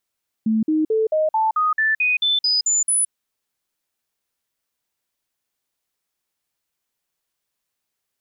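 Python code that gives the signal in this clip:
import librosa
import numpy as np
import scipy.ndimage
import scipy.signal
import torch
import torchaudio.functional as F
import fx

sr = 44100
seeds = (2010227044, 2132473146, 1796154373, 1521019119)

y = fx.stepped_sweep(sr, from_hz=220.0, direction='up', per_octave=2, tones=12, dwell_s=0.17, gap_s=0.05, level_db=-15.5)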